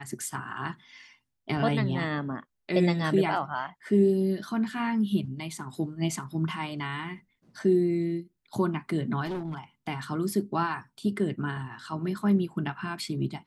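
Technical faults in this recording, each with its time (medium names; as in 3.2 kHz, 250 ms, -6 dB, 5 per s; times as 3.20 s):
9.25–9.58 s: clipped -29.5 dBFS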